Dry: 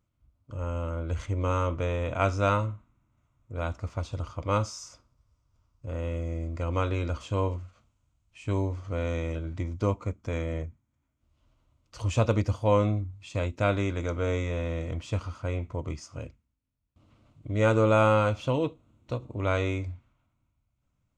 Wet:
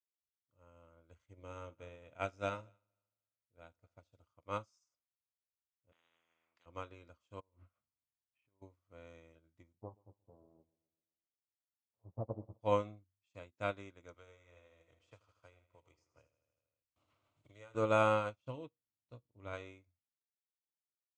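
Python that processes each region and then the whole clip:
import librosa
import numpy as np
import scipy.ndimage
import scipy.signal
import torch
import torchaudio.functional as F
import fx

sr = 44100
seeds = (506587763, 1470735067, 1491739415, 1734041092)

y = fx.chain(x, sr, fx.peak_eq(hz=1100.0, db=-9.0, octaves=0.32),
    fx.echo_heads(ms=76, heads='first and third', feedback_pct=46, wet_db=-18), at=(1.24, 4.26))
y = fx.chain(y, sr, fx.bandpass_edges(low_hz=360.0, high_hz=2100.0),
    fx.spectral_comp(ratio=10.0), at=(5.92, 6.66))
y = fx.chain(y, sr, fx.lowpass(hz=2200.0, slope=12),
    fx.transient(attack_db=2, sustain_db=8),
    fx.over_compress(threshold_db=-32.0, ratio=-0.5), at=(7.4, 8.62))
y = fx.chain(y, sr, fx.lower_of_two(delay_ms=9.2),
    fx.steep_lowpass(hz=890.0, slope=36),
    fx.echo_feedback(ms=128, feedback_pct=54, wet_db=-11.0), at=(9.73, 12.61))
y = fx.chain(y, sr, fx.peak_eq(hz=200.0, db=-12.5, octaves=1.4),
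    fx.echo_feedback(ms=79, feedback_pct=60, wet_db=-9),
    fx.band_squash(depth_pct=100), at=(14.14, 17.75))
y = fx.chain(y, sr, fx.low_shelf(hz=220.0, db=8.5),
    fx.comb_fb(f0_hz=59.0, decay_s=0.25, harmonics='all', damping=0.0, mix_pct=50), at=(18.36, 19.53))
y = scipy.signal.sosfilt(scipy.signal.butter(2, 82.0, 'highpass', fs=sr, output='sos'), y)
y = fx.low_shelf(y, sr, hz=320.0, db=-6.5)
y = fx.upward_expand(y, sr, threshold_db=-44.0, expansion=2.5)
y = y * 10.0 ** (-4.5 / 20.0)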